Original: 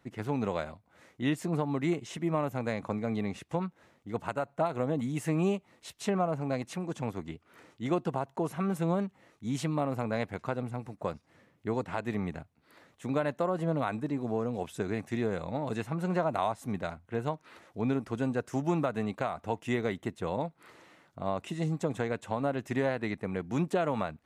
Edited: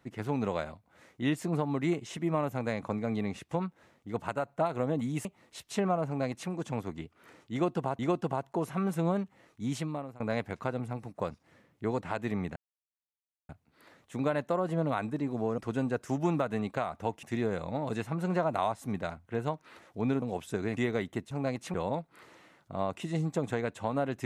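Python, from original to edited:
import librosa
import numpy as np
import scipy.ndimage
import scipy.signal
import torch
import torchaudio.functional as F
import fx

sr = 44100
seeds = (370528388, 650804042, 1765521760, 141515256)

y = fx.edit(x, sr, fx.cut(start_s=5.25, length_s=0.3),
    fx.duplicate(start_s=6.37, length_s=0.43, to_s=20.21),
    fx.repeat(start_s=7.82, length_s=0.47, count=2),
    fx.fade_out_to(start_s=9.5, length_s=0.53, floor_db=-23.5),
    fx.insert_silence(at_s=12.39, length_s=0.93),
    fx.swap(start_s=14.48, length_s=0.55, other_s=18.02, other_length_s=1.65), tone=tone)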